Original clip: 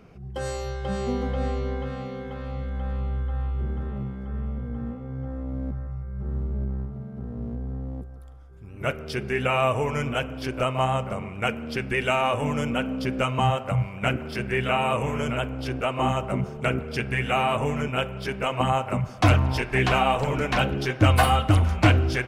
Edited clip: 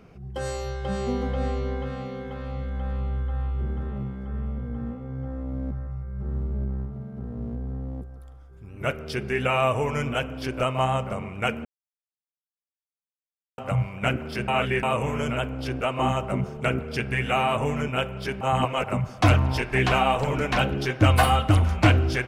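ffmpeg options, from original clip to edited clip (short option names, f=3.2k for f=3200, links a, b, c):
-filter_complex "[0:a]asplit=7[a][b][c][d][e][f][g];[a]atrim=end=11.65,asetpts=PTS-STARTPTS,afade=t=out:st=11.646:d=0.004:c=hsin[h];[b]atrim=start=11.65:end=13.58,asetpts=PTS-STARTPTS,volume=0[i];[c]atrim=start=13.58:end=14.482,asetpts=PTS-STARTPTS,afade=t=in:d=0.004:c=hsin[j];[d]atrim=start=14.478:end=14.832,asetpts=PTS-STARTPTS,areverse[k];[e]atrim=start=14.828:end=18.412[l];[f]atrim=start=18.408:end=18.842,asetpts=PTS-STARTPTS,areverse[m];[g]atrim=start=18.838[n];[h][i][j]concat=n=3:v=0:a=1[o];[o][k]acrossfade=d=0.004:c1=hsin:c2=hsin[p];[p][l]acrossfade=d=0.004:c1=hsin:c2=hsin[q];[q][m]acrossfade=d=0.004:c1=hsin:c2=hsin[r];[r][n]acrossfade=d=0.004:c1=hsin:c2=hsin"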